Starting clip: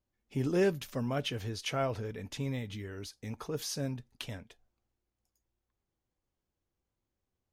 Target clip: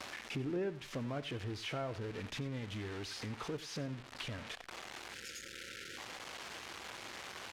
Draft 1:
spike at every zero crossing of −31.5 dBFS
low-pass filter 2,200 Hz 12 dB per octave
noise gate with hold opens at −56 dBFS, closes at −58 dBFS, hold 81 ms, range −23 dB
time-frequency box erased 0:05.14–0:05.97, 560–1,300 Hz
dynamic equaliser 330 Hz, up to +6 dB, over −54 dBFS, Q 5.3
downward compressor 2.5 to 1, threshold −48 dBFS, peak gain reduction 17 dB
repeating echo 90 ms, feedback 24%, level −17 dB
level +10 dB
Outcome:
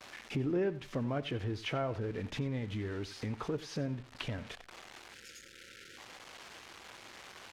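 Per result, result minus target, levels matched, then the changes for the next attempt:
spike at every zero crossing: distortion −10 dB; downward compressor: peak gain reduction −5 dB
change: spike at every zero crossing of −21 dBFS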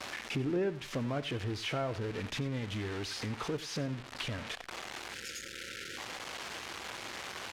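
downward compressor: peak gain reduction −5 dB
change: downward compressor 2.5 to 1, threshold −56.5 dBFS, peak gain reduction 22 dB

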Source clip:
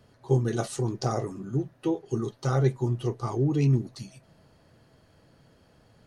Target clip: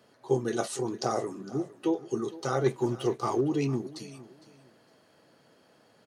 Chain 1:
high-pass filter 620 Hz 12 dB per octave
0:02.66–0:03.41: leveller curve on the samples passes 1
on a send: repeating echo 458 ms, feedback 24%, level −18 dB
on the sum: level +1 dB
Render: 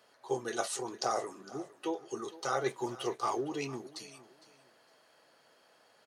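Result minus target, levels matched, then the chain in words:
250 Hz band −4.0 dB
high-pass filter 260 Hz 12 dB per octave
0:02.66–0:03.41: leveller curve on the samples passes 1
on a send: repeating echo 458 ms, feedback 24%, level −18 dB
on the sum: level +1 dB

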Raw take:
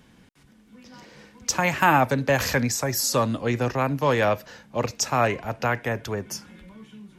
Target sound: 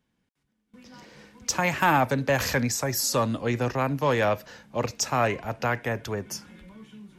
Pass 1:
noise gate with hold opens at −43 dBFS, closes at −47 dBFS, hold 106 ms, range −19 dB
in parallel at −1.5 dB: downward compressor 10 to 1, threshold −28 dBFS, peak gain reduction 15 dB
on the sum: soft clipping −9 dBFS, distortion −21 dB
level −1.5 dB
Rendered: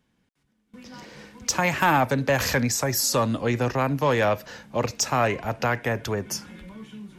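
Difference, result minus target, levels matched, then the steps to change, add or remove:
downward compressor: peak gain reduction +15 dB
remove: downward compressor 10 to 1, threshold −28 dBFS, peak gain reduction 15 dB

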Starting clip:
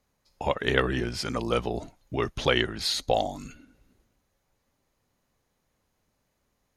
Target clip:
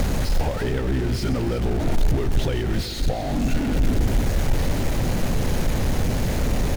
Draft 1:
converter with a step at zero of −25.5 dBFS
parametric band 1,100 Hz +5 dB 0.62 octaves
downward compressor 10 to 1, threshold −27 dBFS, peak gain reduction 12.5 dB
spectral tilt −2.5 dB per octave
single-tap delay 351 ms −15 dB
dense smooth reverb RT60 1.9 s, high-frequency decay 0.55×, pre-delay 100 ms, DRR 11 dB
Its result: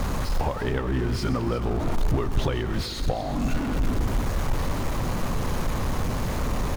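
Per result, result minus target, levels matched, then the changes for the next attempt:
1,000 Hz band +4.5 dB; converter with a step at zero: distortion −6 dB
change: parametric band 1,100 Hz −5.5 dB 0.62 octaves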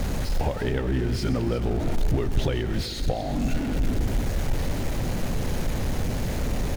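converter with a step at zero: distortion −6 dB
change: converter with a step at zero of −15.5 dBFS

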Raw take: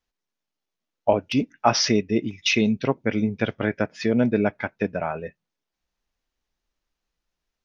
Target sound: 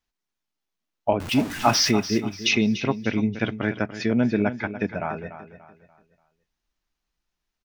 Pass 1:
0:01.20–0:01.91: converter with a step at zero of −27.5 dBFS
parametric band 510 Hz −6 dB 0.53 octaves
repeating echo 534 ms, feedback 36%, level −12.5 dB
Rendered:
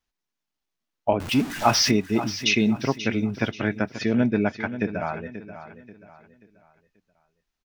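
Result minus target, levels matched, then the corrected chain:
echo 243 ms late
0:01.20–0:01.91: converter with a step at zero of −27.5 dBFS
parametric band 510 Hz −6 dB 0.53 octaves
repeating echo 291 ms, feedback 36%, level −12.5 dB

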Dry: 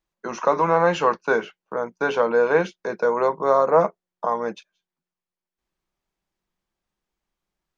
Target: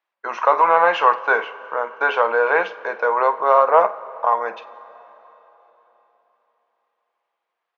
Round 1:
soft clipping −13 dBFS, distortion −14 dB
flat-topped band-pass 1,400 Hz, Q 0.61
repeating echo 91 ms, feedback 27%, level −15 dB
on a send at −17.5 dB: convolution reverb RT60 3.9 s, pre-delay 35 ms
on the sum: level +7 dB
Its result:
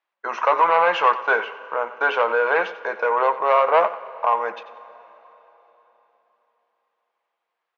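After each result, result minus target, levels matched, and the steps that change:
echo 43 ms late; soft clipping: distortion +14 dB
change: repeating echo 48 ms, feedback 27%, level −15 dB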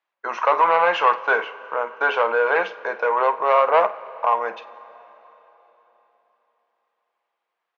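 soft clipping: distortion +14 dB
change: soft clipping −3.5 dBFS, distortion −28 dB

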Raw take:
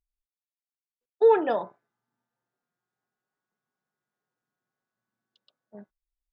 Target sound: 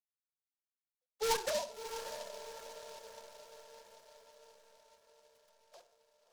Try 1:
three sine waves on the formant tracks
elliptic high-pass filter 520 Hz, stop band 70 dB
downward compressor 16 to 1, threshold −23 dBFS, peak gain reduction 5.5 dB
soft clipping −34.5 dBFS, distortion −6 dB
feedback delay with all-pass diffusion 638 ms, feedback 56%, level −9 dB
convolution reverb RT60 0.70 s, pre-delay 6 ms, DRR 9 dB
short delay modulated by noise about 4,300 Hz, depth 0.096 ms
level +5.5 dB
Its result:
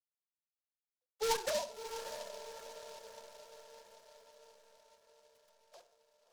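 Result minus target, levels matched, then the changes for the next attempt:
downward compressor: peak gain reduction +5.5 dB
remove: downward compressor 16 to 1, threshold −23 dBFS, peak gain reduction 5.5 dB

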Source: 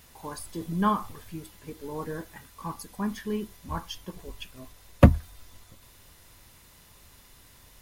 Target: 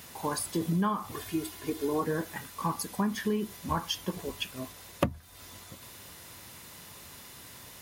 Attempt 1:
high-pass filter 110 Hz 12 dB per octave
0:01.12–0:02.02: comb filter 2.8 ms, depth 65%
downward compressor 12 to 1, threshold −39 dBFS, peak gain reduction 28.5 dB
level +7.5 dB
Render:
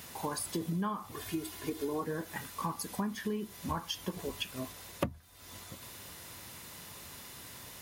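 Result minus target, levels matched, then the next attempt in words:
downward compressor: peak gain reduction +6 dB
high-pass filter 110 Hz 12 dB per octave
0:01.12–0:02.02: comb filter 2.8 ms, depth 65%
downward compressor 12 to 1, threshold −32.5 dBFS, peak gain reduction 22.5 dB
level +7.5 dB

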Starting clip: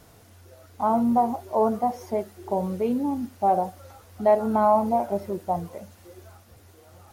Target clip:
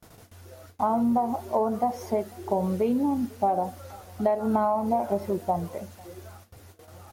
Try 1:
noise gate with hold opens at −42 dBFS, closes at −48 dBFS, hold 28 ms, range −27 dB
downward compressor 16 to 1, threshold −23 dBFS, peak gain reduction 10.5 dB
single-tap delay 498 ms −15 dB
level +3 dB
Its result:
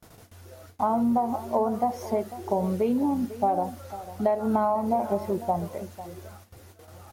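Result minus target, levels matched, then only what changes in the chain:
echo-to-direct +10.5 dB
change: single-tap delay 498 ms −25.5 dB

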